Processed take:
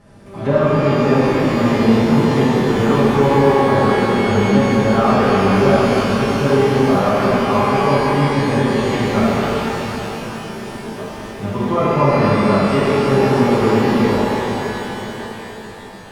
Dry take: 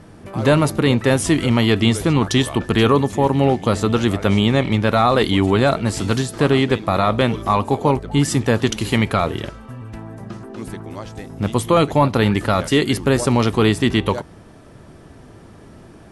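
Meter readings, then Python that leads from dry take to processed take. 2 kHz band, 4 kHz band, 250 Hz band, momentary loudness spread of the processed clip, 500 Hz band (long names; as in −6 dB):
+2.0 dB, −3.0 dB, +3.0 dB, 14 LU, +4.0 dB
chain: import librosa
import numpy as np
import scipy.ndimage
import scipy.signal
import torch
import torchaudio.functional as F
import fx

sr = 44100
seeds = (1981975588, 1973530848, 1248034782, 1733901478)

y = fx.env_lowpass_down(x, sr, base_hz=1500.0, full_db=-13.5)
y = y + 0.41 * np.pad(y, (int(5.0 * sr / 1000.0), 0))[:len(y)]
y = fx.rev_shimmer(y, sr, seeds[0], rt60_s=4.0, semitones=12, shimmer_db=-8, drr_db=-10.0)
y = y * 10.0 ** (-8.5 / 20.0)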